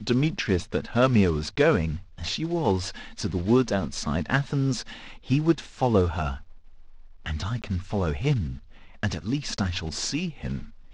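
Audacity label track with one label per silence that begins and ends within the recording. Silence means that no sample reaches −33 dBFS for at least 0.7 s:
6.370000	7.260000	silence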